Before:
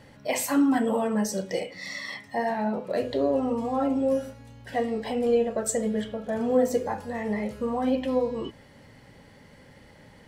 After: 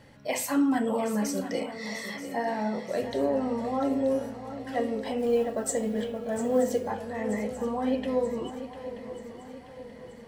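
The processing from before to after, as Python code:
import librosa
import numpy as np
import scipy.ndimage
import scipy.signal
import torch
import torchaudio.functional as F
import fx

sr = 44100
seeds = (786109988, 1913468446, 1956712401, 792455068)

y = fx.echo_swing(x, sr, ms=931, ratio=3, feedback_pct=49, wet_db=-12.0)
y = fx.mod_noise(y, sr, seeds[0], snr_db=34, at=(5.18, 6.91))
y = y * librosa.db_to_amplitude(-2.5)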